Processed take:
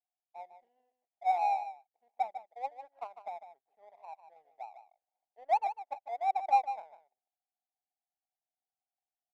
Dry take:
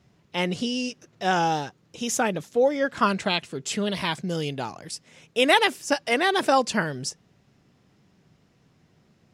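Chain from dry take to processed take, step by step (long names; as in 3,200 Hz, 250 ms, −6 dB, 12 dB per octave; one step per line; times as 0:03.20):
flat-topped band-pass 760 Hz, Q 5.2
power curve on the samples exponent 1.4
single-tap delay 150 ms −11 dB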